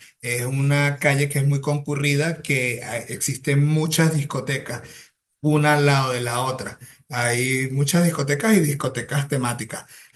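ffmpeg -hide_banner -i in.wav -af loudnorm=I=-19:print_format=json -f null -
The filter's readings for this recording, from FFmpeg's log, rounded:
"input_i" : "-21.3",
"input_tp" : "-3.2",
"input_lra" : "0.9",
"input_thresh" : "-31.7",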